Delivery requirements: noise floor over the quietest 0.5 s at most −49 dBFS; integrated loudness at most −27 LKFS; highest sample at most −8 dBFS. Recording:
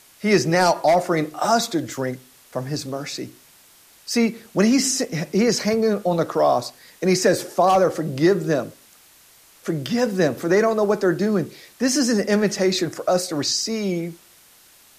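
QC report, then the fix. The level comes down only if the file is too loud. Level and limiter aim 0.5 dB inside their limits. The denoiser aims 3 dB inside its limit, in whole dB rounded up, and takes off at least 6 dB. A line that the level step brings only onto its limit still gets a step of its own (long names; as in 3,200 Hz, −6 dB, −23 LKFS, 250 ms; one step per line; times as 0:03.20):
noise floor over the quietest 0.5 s −52 dBFS: in spec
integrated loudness −21.0 LKFS: out of spec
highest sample −5.0 dBFS: out of spec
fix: level −6.5 dB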